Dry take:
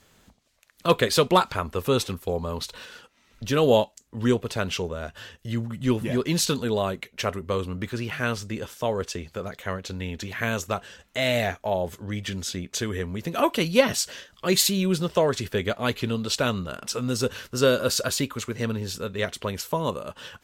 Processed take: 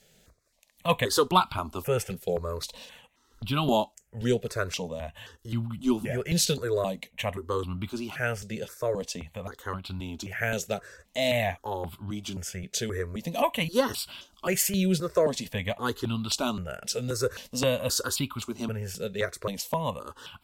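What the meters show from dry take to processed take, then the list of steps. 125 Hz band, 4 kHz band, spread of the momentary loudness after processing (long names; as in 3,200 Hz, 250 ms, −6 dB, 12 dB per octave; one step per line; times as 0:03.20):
−3.0 dB, −4.0 dB, 12 LU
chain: step-sequenced phaser 3.8 Hz 290–1,800 Hz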